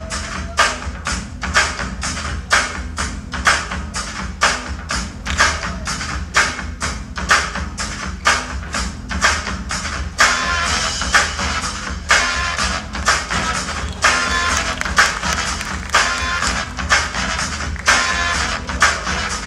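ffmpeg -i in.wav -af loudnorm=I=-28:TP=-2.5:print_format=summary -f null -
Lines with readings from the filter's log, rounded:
Input Integrated:    -17.8 LUFS
Input True Peak:      -2.4 dBTP
Input LRA:             2.6 LU
Input Threshold:     -27.8 LUFS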